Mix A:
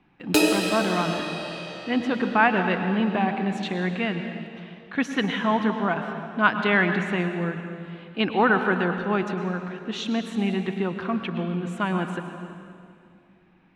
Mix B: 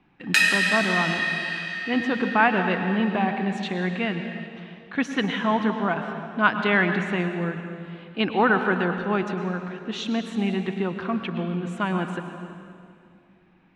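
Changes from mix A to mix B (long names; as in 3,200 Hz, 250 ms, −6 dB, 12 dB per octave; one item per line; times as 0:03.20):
background: add high-pass with resonance 1,800 Hz, resonance Q 9.1
master: add low-pass filter 10,000 Hz 12 dB per octave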